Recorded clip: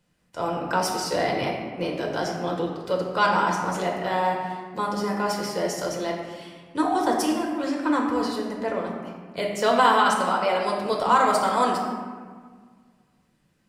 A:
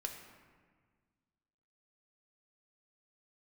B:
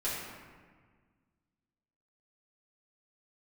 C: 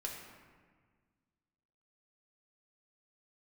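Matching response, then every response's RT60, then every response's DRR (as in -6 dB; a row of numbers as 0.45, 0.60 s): C; 1.6, 1.6, 1.6 s; 2.5, -10.0, -1.5 dB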